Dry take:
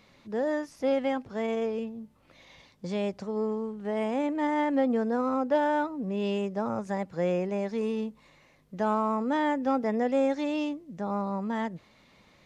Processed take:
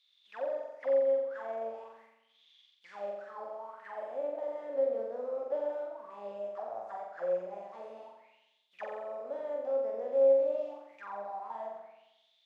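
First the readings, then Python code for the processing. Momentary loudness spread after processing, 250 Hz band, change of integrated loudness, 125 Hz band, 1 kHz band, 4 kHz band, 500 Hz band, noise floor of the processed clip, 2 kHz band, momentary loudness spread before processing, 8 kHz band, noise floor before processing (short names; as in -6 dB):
18 LU, -24.5 dB, -5.0 dB, under -25 dB, -11.0 dB, under -15 dB, -2.0 dB, -71 dBFS, -13.5 dB, 9 LU, n/a, -61 dBFS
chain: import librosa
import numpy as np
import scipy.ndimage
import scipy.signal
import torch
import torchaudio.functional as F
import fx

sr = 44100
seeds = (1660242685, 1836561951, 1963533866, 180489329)

y = fx.spec_flatten(x, sr, power=0.55)
y = fx.auto_wah(y, sr, base_hz=550.0, top_hz=3700.0, q=13.0, full_db=-24.5, direction='down')
y = fx.room_flutter(y, sr, wall_m=7.6, rt60_s=0.89)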